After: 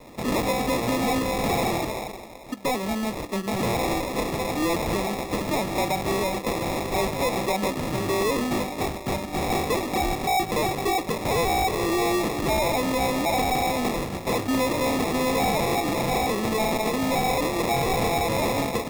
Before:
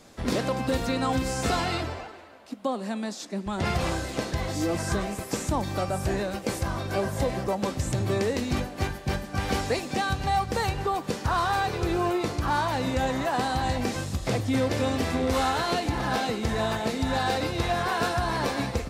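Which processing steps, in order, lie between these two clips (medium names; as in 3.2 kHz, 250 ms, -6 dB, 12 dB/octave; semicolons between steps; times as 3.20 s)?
high-pass 220 Hz 12 dB/octave; sample-and-hold 29×; saturation -27.5 dBFS, distortion -11 dB; trim +8 dB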